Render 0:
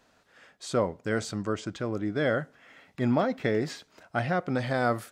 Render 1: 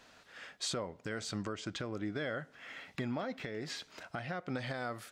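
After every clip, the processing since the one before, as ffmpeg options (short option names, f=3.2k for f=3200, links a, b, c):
-af "equalizer=f=3.2k:w=0.47:g=6.5,acompressor=threshold=-34dB:ratio=3,alimiter=level_in=3dB:limit=-24dB:level=0:latency=1:release=437,volume=-3dB,volume=1dB"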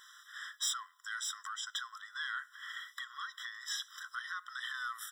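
-af "highshelf=f=5.7k:g=10.5,asoftclip=type=tanh:threshold=-29.5dB,afftfilt=real='re*eq(mod(floor(b*sr/1024/1000),2),1)':imag='im*eq(mod(floor(b*sr/1024/1000),2),1)':win_size=1024:overlap=0.75,volume=5dB"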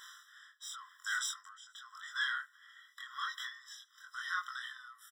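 -filter_complex "[0:a]asplit=2[a][b];[b]adelay=23,volume=-2.5dB[c];[a][c]amix=inputs=2:normalize=0,aecho=1:1:455:0.112,aeval=exprs='val(0)*pow(10,-20*(0.5-0.5*cos(2*PI*0.91*n/s))/20)':c=same,volume=3.5dB"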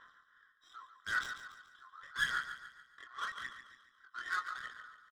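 -af "adynamicsmooth=sensitivity=7.5:basefreq=990,aphaser=in_gain=1:out_gain=1:delay=2.9:decay=0.43:speed=0.83:type=sinusoidal,aecho=1:1:142|284|426|568|710:0.316|0.142|0.064|0.0288|0.013"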